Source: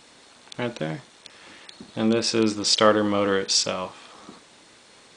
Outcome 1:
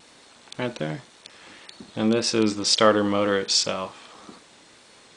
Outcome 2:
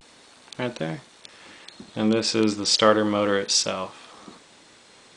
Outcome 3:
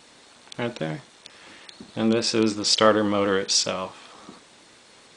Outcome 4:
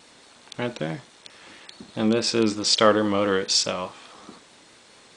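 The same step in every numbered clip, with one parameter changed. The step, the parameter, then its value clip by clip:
vibrato, rate: 1.9, 0.36, 7.4, 4.7 Hz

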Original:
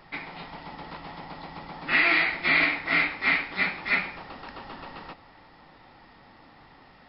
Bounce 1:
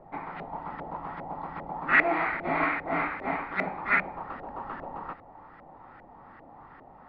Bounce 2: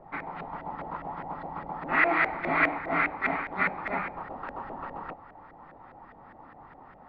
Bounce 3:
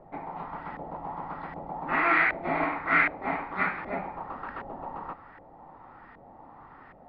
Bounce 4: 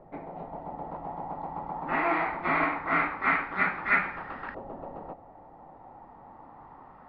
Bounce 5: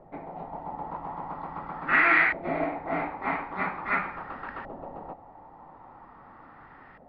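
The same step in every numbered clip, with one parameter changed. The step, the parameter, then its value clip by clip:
LFO low-pass, rate: 2.5, 4.9, 1.3, 0.22, 0.43 Hz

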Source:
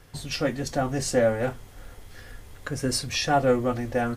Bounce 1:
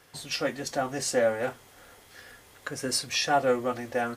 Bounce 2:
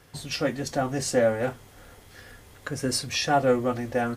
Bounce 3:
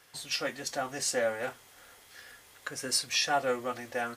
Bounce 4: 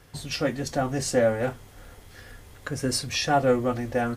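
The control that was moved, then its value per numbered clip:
HPF, cutoff: 480, 110, 1300, 43 Hz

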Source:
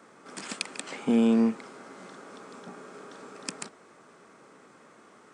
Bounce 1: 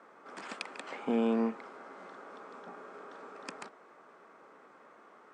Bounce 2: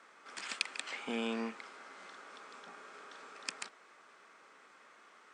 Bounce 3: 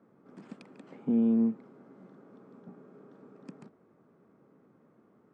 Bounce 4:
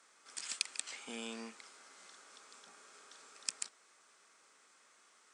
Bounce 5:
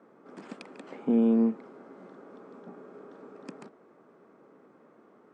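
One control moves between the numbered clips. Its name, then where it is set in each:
band-pass, frequency: 900, 2500, 120, 6900, 330 Hz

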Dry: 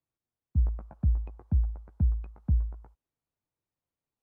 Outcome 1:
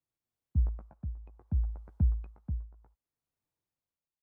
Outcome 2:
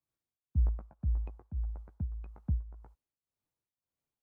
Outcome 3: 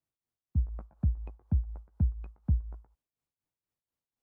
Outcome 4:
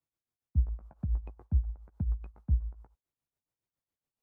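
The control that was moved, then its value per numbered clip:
tremolo, rate: 0.65, 1.8, 4.1, 7.2 Hz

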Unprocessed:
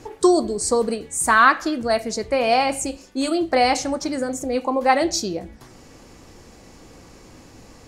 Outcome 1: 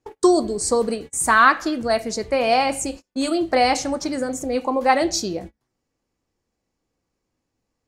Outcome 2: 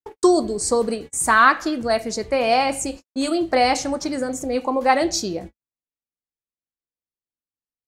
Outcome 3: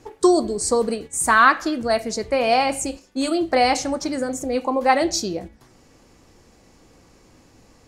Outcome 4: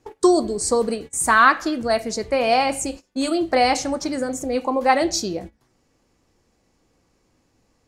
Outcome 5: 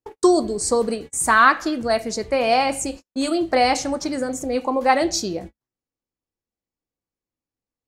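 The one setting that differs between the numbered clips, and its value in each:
gate, range: -32, -60, -7, -19, -47 dB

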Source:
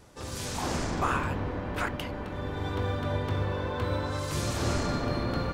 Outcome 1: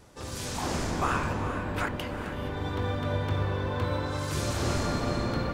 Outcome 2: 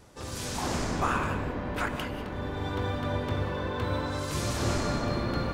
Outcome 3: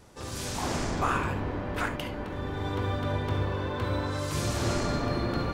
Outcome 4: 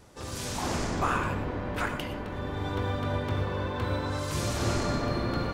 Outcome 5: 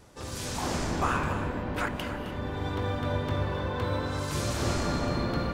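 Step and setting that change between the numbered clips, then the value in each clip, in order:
non-linear reverb, gate: 490, 220, 90, 140, 320 ms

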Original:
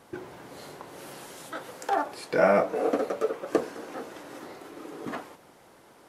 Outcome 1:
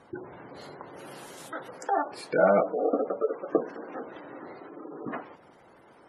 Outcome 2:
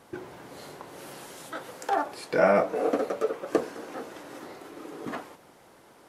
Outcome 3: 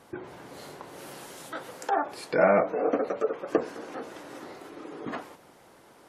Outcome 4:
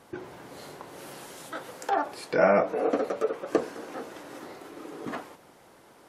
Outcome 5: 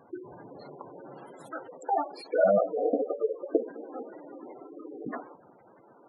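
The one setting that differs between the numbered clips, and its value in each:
spectral gate, under each frame's peak: -20, -60, -35, -45, -10 dB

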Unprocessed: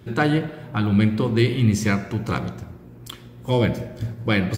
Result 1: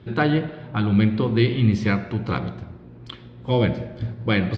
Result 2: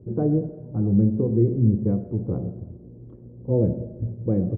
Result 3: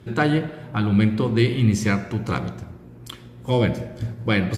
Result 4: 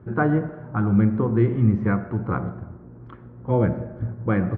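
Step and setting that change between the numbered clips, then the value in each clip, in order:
Chebyshev low-pass, frequency: 4100, 510, 12000, 1400 Hz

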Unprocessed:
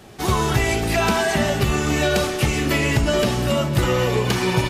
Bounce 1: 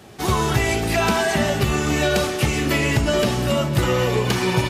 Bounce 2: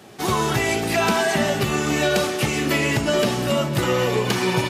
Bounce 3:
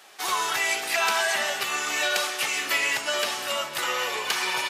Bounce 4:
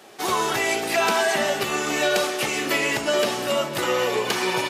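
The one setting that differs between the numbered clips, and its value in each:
HPF, cutoff: 50, 140, 1000, 390 Hz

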